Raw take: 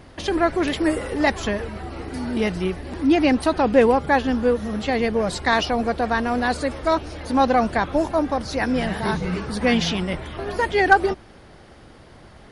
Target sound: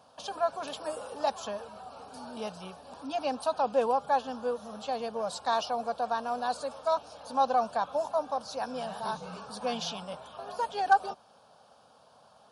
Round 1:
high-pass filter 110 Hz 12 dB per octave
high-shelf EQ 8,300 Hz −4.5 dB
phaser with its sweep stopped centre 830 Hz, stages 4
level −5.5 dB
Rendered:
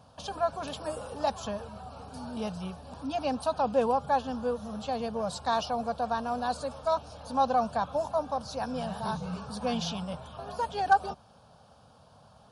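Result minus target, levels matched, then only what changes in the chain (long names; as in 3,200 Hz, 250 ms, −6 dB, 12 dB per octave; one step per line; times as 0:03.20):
125 Hz band +11.0 dB
change: high-pass filter 320 Hz 12 dB per octave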